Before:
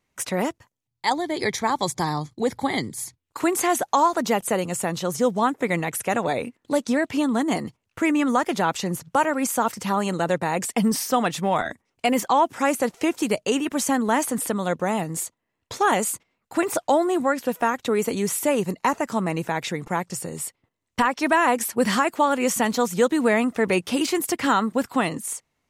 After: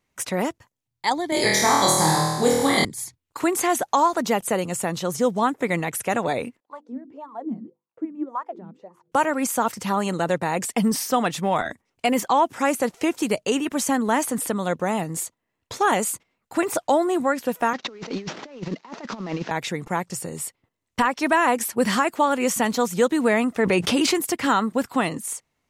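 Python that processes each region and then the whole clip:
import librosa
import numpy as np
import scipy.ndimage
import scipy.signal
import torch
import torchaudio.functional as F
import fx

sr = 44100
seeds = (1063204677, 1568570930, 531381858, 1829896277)

y = fx.chain(x, sr, fx.high_shelf(hz=5700.0, db=10.0),
    fx.room_flutter(wall_m=4.3, rt60_s=1.1),
    fx.band_squash(depth_pct=40), at=(1.32, 2.85))
y = fx.chain(y, sr, fx.hum_notches(base_hz=50, count=10),
    fx.wah_lfo(hz=1.8, low_hz=200.0, high_hz=1100.0, q=7.4), at=(6.6, 9.12))
y = fx.chain(y, sr, fx.cvsd(bps=32000),
    fx.highpass(hz=170.0, slope=24),
    fx.over_compress(threshold_db=-30.0, ratio=-0.5), at=(17.73, 19.51))
y = fx.chain(y, sr, fx.high_shelf(hz=10000.0, db=-9.5),
    fx.env_flatten(amount_pct=70), at=(23.59, 24.14))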